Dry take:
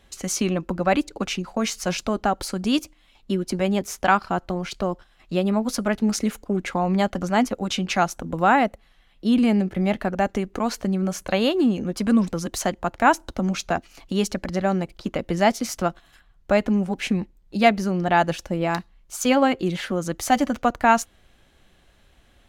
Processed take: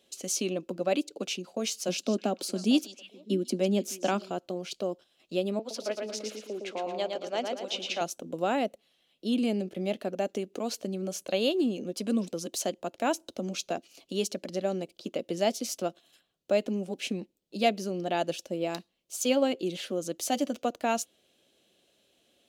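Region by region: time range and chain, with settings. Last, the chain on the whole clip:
0:01.88–0:04.31: high-pass with resonance 210 Hz, resonance Q 2.5 + echo through a band-pass that steps 151 ms, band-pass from 5,400 Hz, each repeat −1.4 octaves, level −8.5 dB
0:05.59–0:08.01: three-way crossover with the lows and the highs turned down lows −17 dB, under 370 Hz, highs −15 dB, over 5,400 Hz + repeating echo 113 ms, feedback 41%, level −4 dB
whole clip: high-pass filter 310 Hz 12 dB per octave; flat-topped bell 1,300 Hz −12.5 dB; level −3.5 dB

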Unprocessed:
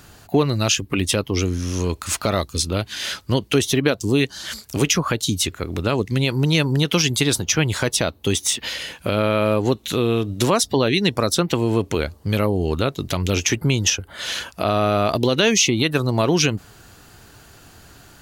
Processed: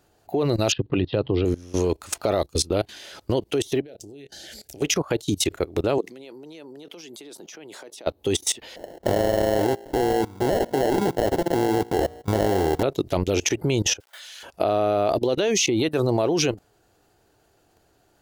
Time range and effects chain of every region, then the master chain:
0:00.72–0:01.45: Butterworth low-pass 4,400 Hz 72 dB per octave + parametric band 130 Hz +11.5 dB 0.68 octaves + notch filter 2,200 Hz, Q 7.6
0:03.80–0:04.82: Butterworth band-reject 1,100 Hz, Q 1.5 + downward compressor 5 to 1, threshold −31 dBFS + double-tracking delay 29 ms −14 dB
0:05.98–0:08.07: high-pass filter 210 Hz 24 dB per octave + downward compressor, threshold −26 dBFS
0:08.76–0:12.83: hum removal 58.11 Hz, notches 17 + sample-rate reduction 1,200 Hz + Butterworth band-reject 2,500 Hz, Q 7.3
0:14.00–0:14.43: hold until the input has moved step −45 dBFS + high-pass filter 1,400 Hz + high-shelf EQ 4,400 Hz +5.5 dB
whole clip: flat-topped bell 510 Hz +9 dB; output level in coarse steps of 21 dB

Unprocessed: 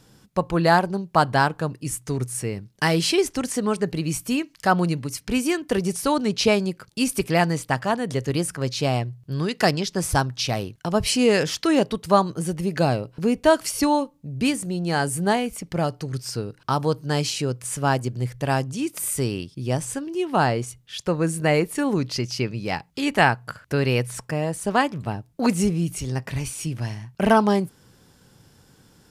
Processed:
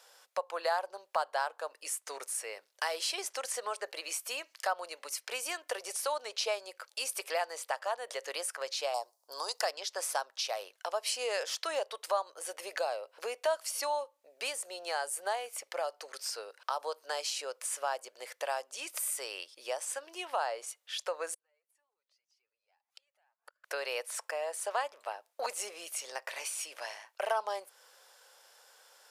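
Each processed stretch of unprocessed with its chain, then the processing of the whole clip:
0:08.94–0:09.61: drawn EQ curve 560 Hz 0 dB, 930 Hz +10 dB, 1,800 Hz −13 dB, 2,800 Hz −11 dB, 5,000 Hz +11 dB + one half of a high-frequency compander decoder only
0:21.34–0:23.64: downward compressor 16 to 1, threshold −31 dBFS + gate with flip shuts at −30 dBFS, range −34 dB + flanger whose copies keep moving one way rising 2 Hz
whole clip: elliptic high-pass filter 540 Hz, stop band 80 dB; dynamic equaliser 2,100 Hz, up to −4 dB, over −35 dBFS, Q 1.1; downward compressor 2 to 1, threshold −37 dBFS

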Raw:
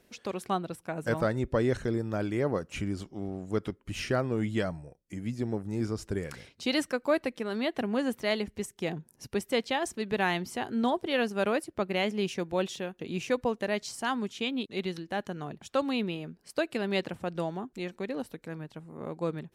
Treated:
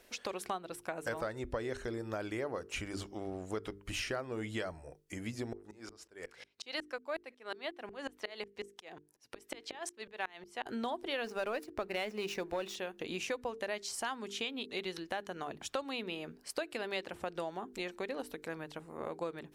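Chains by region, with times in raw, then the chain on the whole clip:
0:05.53–0:10.66: high-pass filter 450 Hz 6 dB per octave + high-shelf EQ 8,800 Hz −9 dB + tremolo with a ramp in dB swelling 5.5 Hz, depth 32 dB
0:11.24–0:12.75: running median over 5 samples + notch filter 3,200 Hz, Q 9.4 + leveller curve on the samples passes 1
whole clip: parametric band 160 Hz −13 dB 1.7 octaves; mains-hum notches 50/100/150/200/250/300/350/400/450 Hz; downward compressor 4 to 1, threshold −41 dBFS; level +5 dB

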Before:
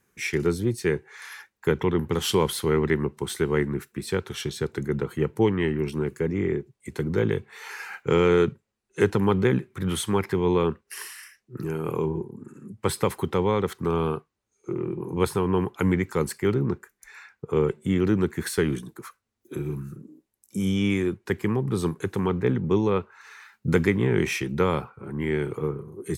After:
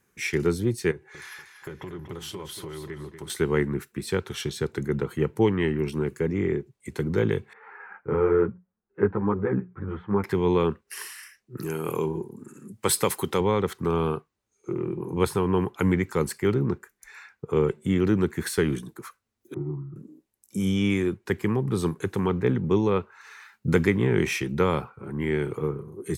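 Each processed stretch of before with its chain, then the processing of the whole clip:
0:00.91–0:03.30: downward compressor 4 to 1, threshold −35 dBFS + notch comb filter 230 Hz + feedback echo with a swinging delay time 237 ms, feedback 30%, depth 54 cents, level −9 dB
0:07.53–0:10.24: low-pass filter 1,600 Hz 24 dB per octave + mains-hum notches 60/120/180 Hz + string-ensemble chorus
0:11.58–0:13.41: high-pass filter 150 Hz 6 dB per octave + high-shelf EQ 3,800 Hz +11 dB + de-essing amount 20%
0:19.54–0:19.96: Butterworth low-pass 2,000 Hz 96 dB per octave + phaser with its sweep stopped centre 320 Hz, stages 8
whole clip: no processing

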